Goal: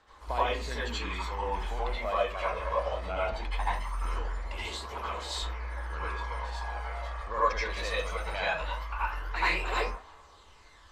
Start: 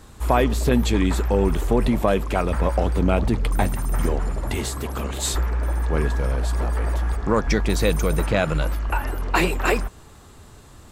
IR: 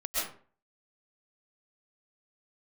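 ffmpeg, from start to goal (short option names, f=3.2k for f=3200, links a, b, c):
-filter_complex "[0:a]acrossover=split=530 5600:gain=0.126 1 0.1[a][b][c];[a][b][c]amix=inputs=3:normalize=0,areverse,acompressor=mode=upward:threshold=-47dB:ratio=2.5,areverse,aphaser=in_gain=1:out_gain=1:delay=1.9:decay=0.45:speed=0.2:type=triangular[d];[1:a]atrim=start_sample=2205,asetrate=70560,aresample=44100[e];[d][e]afir=irnorm=-1:irlink=0,volume=-7.5dB"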